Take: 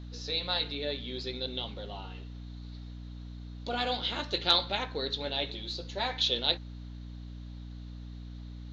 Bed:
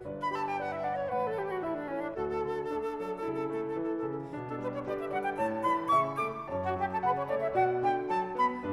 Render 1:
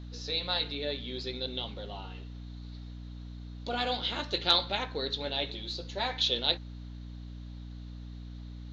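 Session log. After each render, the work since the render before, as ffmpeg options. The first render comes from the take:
-af anull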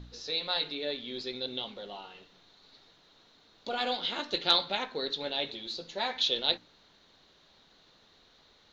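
-af "bandreject=f=60:t=h:w=4,bandreject=f=120:t=h:w=4,bandreject=f=180:t=h:w=4,bandreject=f=240:t=h:w=4,bandreject=f=300:t=h:w=4"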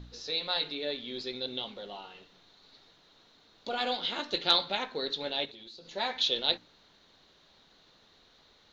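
-filter_complex "[0:a]asettb=1/sr,asplit=3[a][b][c];[a]atrim=end=5.454[d];[b]atrim=start=5.45:end=5.91,asetpts=PTS-STARTPTS,afade=t=in:d=0.004:c=qsin,afade=t=out:st=0.456:d=0.004:c=qsin,acompressor=threshold=-45dB:ratio=12:attack=3.2:release=140:knee=1:detection=peak[e];[c]atrim=start=5.906[f];[d][e]acrossfade=d=0.004:c1=hsin:c2=qsin[g];[g][f]acrossfade=d=0.004:c1=qsin:c2=hsin"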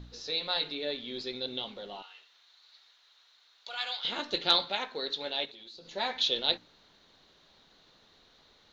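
-filter_complex "[0:a]asettb=1/sr,asplit=3[a][b][c];[a]atrim=end=2.024[d];[b]atrim=start=2.02:end=4.05,asetpts=PTS-STARTPTS,afade=t=in:d=0.004:c=qsin,afade=t=out:st=2.026:d=0.004:c=qsin,highpass=1.3k[e];[c]atrim=start=4.046[f];[d][e]acrossfade=d=0.004:c1=hsin:c2=qsin[g];[g][f]acrossfade=d=0.004:c1=qsin:c2=hsin,asettb=1/sr,asplit=3[h][i][j];[h]atrim=end=4.654[k];[i]atrim=start=4.65:end=5.75,asetpts=PTS-STARTPTS,afade=t=in:d=0.004:c=qsin,afade=t=out:st=1.096:d=0.004:c=qsin,lowshelf=f=260:g=-9[l];[j]atrim=start=5.746[m];[k][l]acrossfade=d=0.004:c1=hsin:c2=qsin[n];[n][m]acrossfade=d=0.004:c1=qsin:c2=hsin"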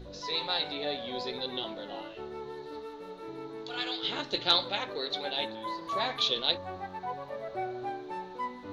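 -filter_complex "[1:a]volume=-8dB[a];[0:a][a]amix=inputs=2:normalize=0"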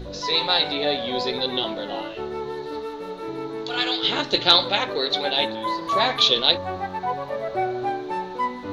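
-af "volume=10.5dB,alimiter=limit=-3dB:level=0:latency=1"

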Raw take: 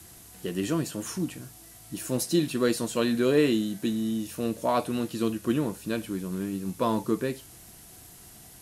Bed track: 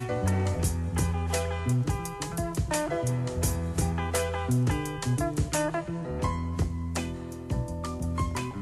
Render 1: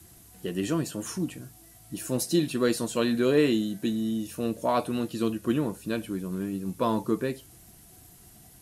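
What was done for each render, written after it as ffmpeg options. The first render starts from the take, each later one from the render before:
-af "afftdn=nr=6:nf=-50"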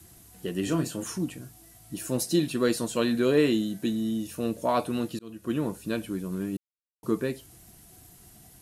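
-filter_complex "[0:a]asettb=1/sr,asplit=3[a][b][c];[a]atrim=end=0.634[d];[b]atrim=start=0.63:end=1.04,asetpts=PTS-STARTPTS,afade=t=in:d=0.004:c=qsin,afade=t=out:st=0.406:d=0.004:c=qsin,asplit=2[e][f];[f]adelay=31,volume=-8dB[g];[e][g]amix=inputs=2:normalize=0,atrim=end_sample=18081[h];[c]atrim=start=1.036[i];[d][h]acrossfade=d=0.004:c1=hsin:c2=qsin[j];[j][i]acrossfade=d=0.004:c1=qsin:c2=hsin,asplit=4[k][l][m][n];[k]atrim=end=5.19,asetpts=PTS-STARTPTS,afade=t=out:st=5.186:d=0.004:c=hsin[o];[l]atrim=start=5.19:end=6.57,asetpts=PTS-STARTPTS,afade=t=in:d=0.48,afade=t=out:st=1.376:d=0.004:c=hsin[p];[m]atrim=start=6.57:end=7.03,asetpts=PTS-STARTPTS,volume=0[q];[n]atrim=start=7.03,asetpts=PTS-STARTPTS,afade=t=in:d=0.004:c=hsin[r];[o][p][q][r]concat=n=4:v=0:a=1"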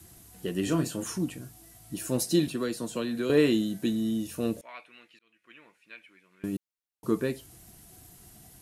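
-filter_complex "[0:a]asettb=1/sr,asplit=3[a][b][c];[a]atrim=end=2.474[d];[b]atrim=start=2.47:end=3.3,asetpts=PTS-STARTPTS,afade=t=in:d=0.004:c=qsin,afade=t=out:st=0.826:d=0.004:c=qsin,acrossover=split=140|380|1300[e][f][g][h];[e]acompressor=threshold=-50dB:ratio=3[i];[f]acompressor=threshold=-33dB:ratio=3[j];[g]acompressor=threshold=-38dB:ratio=3[k];[h]acompressor=threshold=-41dB:ratio=3[l];[i][j][k][l]amix=inputs=4:normalize=0[m];[c]atrim=start=3.296[n];[d][m]acrossfade=d=0.004:c1=hsin:c2=qsin[o];[o][n]acrossfade=d=0.004:c1=qsin:c2=hsin,asettb=1/sr,asplit=3[p][q][r];[p]atrim=end=4.614[s];[q]atrim=start=4.61:end=6.44,asetpts=PTS-STARTPTS,afade=t=in:d=0.004:c=qsin,afade=t=out:st=1.826:d=0.004:c=qsin,bandpass=f=2.2k:t=q:w=5.3[t];[r]atrim=start=6.436[u];[s][t]acrossfade=d=0.004:c1=hsin:c2=qsin[v];[v][u]acrossfade=d=0.004:c1=qsin:c2=hsin"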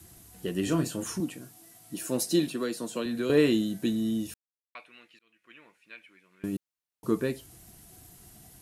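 -filter_complex "[0:a]asettb=1/sr,asplit=3[a][b][c];[a]atrim=end=1.204[d];[b]atrim=start=1.2:end=3.06,asetpts=PTS-STARTPTS,afade=t=in:d=0.004:c=qsin,afade=t=out:st=1.856:d=0.004:c=qsin,highpass=180[e];[c]atrim=start=3.056[f];[d][e]acrossfade=d=0.004:c1=hsin:c2=qsin[g];[g][f]acrossfade=d=0.004:c1=qsin:c2=hsin,asplit=3[h][i][j];[h]atrim=end=4.34,asetpts=PTS-STARTPTS,afade=t=out:st=4.336:d=0.004:c=hsin[k];[i]atrim=start=4.34:end=4.75,asetpts=PTS-STARTPTS,volume=0[l];[j]atrim=start=4.75,asetpts=PTS-STARTPTS,afade=t=in:d=0.004:c=hsin[m];[k][l][m]concat=n=3:v=0:a=1"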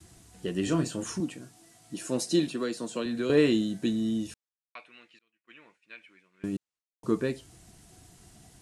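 -af "agate=range=-33dB:threshold=-58dB:ratio=3:detection=peak,lowpass=f=9k:w=0.5412,lowpass=f=9k:w=1.3066"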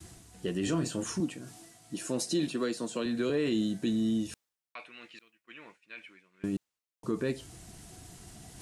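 -af "alimiter=limit=-21dB:level=0:latency=1:release=57,areverse,acompressor=mode=upward:threshold=-42dB:ratio=2.5,areverse"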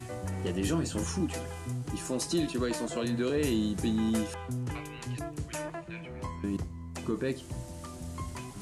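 -filter_complex "[1:a]volume=-9.5dB[a];[0:a][a]amix=inputs=2:normalize=0"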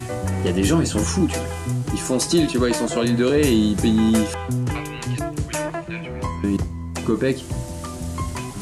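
-af "volume=11.5dB"

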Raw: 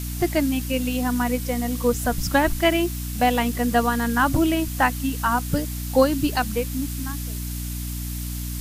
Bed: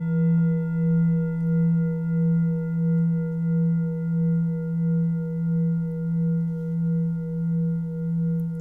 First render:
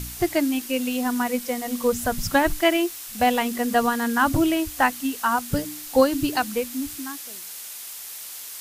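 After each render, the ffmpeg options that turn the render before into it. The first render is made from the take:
-af "bandreject=f=60:t=h:w=4,bandreject=f=120:t=h:w=4,bandreject=f=180:t=h:w=4,bandreject=f=240:t=h:w=4,bandreject=f=300:t=h:w=4"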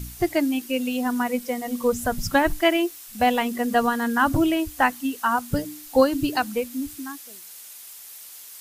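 -af "afftdn=nr=7:nf=-37"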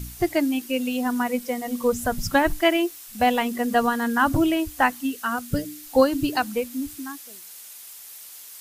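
-filter_complex "[0:a]asettb=1/sr,asplit=3[a][b][c];[a]atrim=end=5.114[d];[b]atrim=start=5.11:end=5.83,asetpts=PTS-STARTPTS,afade=t=in:d=0.004:c=qsin,afade=t=out:st=0.716:d=0.004:c=qsin,equalizer=f=920:t=o:w=0.56:g=-11[e];[c]atrim=start=5.826[f];[d][e]acrossfade=d=0.004:c1=hsin:c2=qsin[g];[g][f]acrossfade=d=0.004:c1=qsin:c2=hsin"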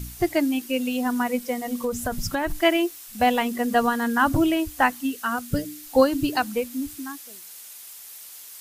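-filter_complex "[0:a]asettb=1/sr,asplit=3[a][b][c];[a]atrim=end=1.664[d];[b]atrim=start=1.66:end=2.58,asetpts=PTS-STARTPTS,afade=t=in:d=0.004:c=qsin,afade=t=out:st=0.916:d=0.004:c=qsin,acompressor=threshold=-21dB:ratio=6:attack=3.2:release=140:knee=1:detection=peak[e];[c]atrim=start=2.576[f];[d][e]acrossfade=d=0.004:c1=hsin:c2=qsin[g];[g][f]acrossfade=d=0.004:c1=qsin:c2=hsin"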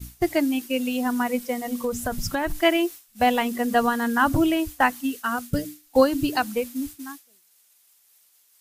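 -af "agate=range=-33dB:threshold=-30dB:ratio=3:detection=peak"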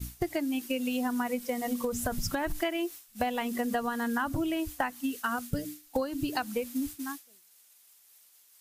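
-af "acompressor=threshold=-27dB:ratio=10"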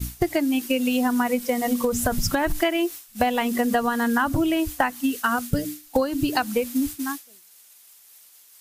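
-af "volume=8.5dB"

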